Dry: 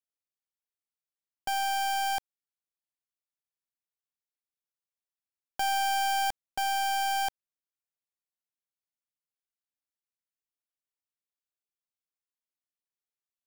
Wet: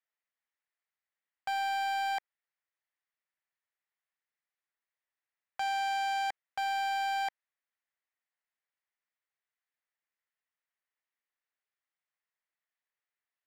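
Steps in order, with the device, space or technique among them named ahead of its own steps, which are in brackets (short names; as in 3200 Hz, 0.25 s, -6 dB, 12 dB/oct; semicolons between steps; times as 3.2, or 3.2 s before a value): megaphone (BPF 600–2600 Hz; bell 1900 Hz +8.5 dB 0.43 oct; hard clip -34.5 dBFS, distortion -7 dB); gain +5 dB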